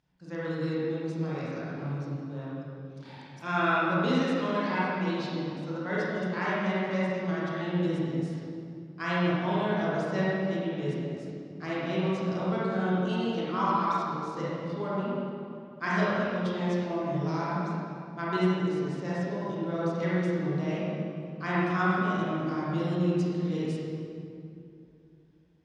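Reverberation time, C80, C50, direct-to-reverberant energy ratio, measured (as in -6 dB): 2.7 s, -2.5 dB, -5.5 dB, -9.0 dB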